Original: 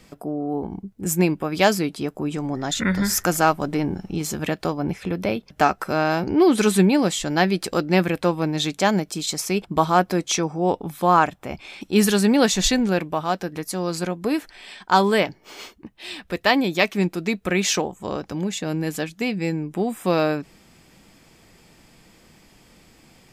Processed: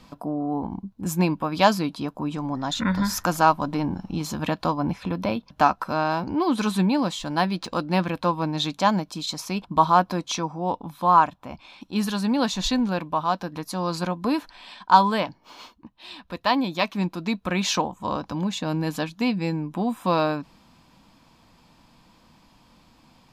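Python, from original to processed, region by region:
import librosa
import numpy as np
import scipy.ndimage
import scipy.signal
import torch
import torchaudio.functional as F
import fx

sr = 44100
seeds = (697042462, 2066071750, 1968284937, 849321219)

y = fx.chain(x, sr, fx.high_shelf(hz=5300.0, db=4.5),
    fx.resample_linear(factor=3), at=(7.22, 8.09))
y = fx.graphic_eq_31(y, sr, hz=(250, 400, 1000, 2000, 4000, 8000), db=(4, -11, 11, -7, 5, -5))
y = fx.rider(y, sr, range_db=4, speed_s=2.0)
y = fx.high_shelf(y, sr, hz=6500.0, db=-7.5)
y = y * librosa.db_to_amplitude(-3.5)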